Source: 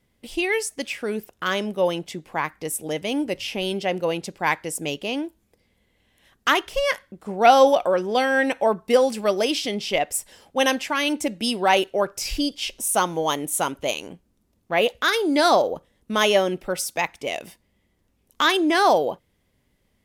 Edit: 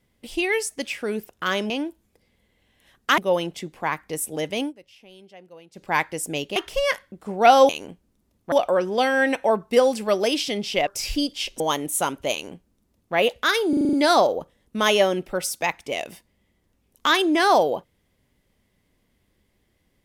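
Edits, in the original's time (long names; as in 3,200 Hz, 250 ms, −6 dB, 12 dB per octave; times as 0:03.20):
0:03.13–0:04.37: duck −22 dB, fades 0.12 s
0:05.08–0:06.56: move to 0:01.70
0:10.04–0:12.09: remove
0:12.82–0:13.19: remove
0:13.91–0:14.74: duplicate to 0:07.69
0:15.28: stutter 0.04 s, 7 plays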